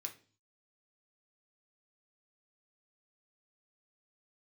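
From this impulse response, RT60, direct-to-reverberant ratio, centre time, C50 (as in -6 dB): 0.40 s, 2.5 dB, 12 ms, 13.0 dB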